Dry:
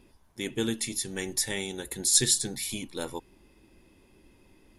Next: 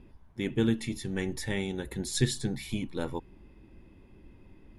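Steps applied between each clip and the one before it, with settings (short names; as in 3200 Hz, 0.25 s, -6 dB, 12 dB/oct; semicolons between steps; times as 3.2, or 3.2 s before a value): tone controls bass +8 dB, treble -15 dB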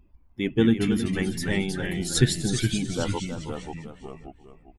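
per-bin expansion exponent 1.5; feedback echo 0.318 s, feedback 23%, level -10 dB; echoes that change speed 0.147 s, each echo -2 st, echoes 2, each echo -6 dB; gain +7.5 dB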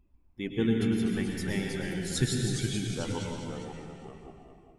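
plate-style reverb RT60 1.8 s, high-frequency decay 0.8×, pre-delay 95 ms, DRR 2 dB; gain -8 dB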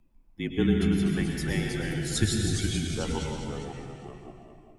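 notches 60/120 Hz; frequency shift -30 Hz; gain +3 dB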